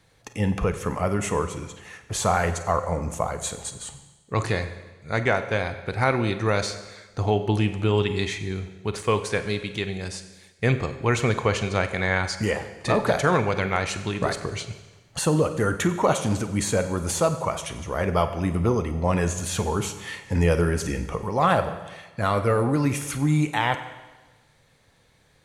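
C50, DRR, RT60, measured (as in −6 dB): 11.0 dB, 9.0 dB, 1.2 s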